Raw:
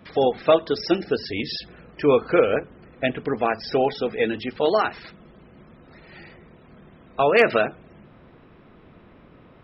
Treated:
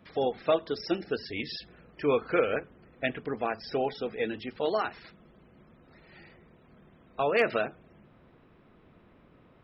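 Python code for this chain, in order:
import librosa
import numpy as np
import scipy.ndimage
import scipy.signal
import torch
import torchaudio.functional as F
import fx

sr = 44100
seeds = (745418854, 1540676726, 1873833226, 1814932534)

y = fx.dynamic_eq(x, sr, hz=1900.0, q=1.1, threshold_db=-36.0, ratio=4.0, max_db=5, at=(1.05, 3.2))
y = y * 10.0 ** (-8.5 / 20.0)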